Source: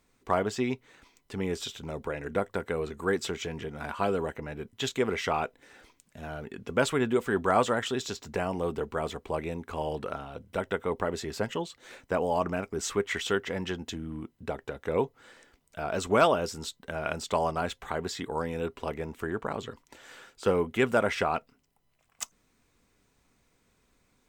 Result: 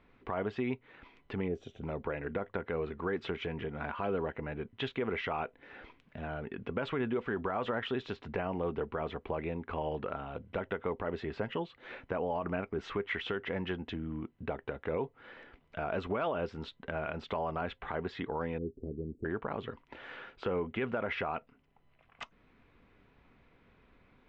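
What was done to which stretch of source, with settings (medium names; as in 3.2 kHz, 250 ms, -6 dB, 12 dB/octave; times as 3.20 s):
1.48–1.82 s: time-frequency box 790–5500 Hz -15 dB
18.58–19.25 s: elliptic band-stop 370–8600 Hz, stop band 50 dB
whole clip: low-pass 3 kHz 24 dB/octave; peak limiter -20.5 dBFS; compression 1.5:1, threshold -53 dBFS; trim +6 dB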